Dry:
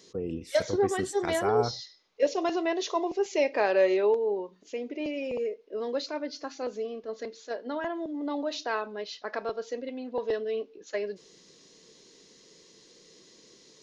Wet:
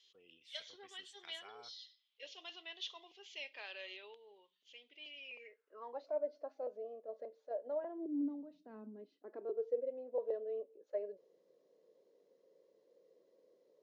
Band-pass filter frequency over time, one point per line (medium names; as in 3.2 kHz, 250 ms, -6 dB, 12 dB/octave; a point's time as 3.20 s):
band-pass filter, Q 6.5
5.20 s 3.2 kHz
6.14 s 600 Hz
7.77 s 600 Hz
8.51 s 170 Hz
9.90 s 550 Hz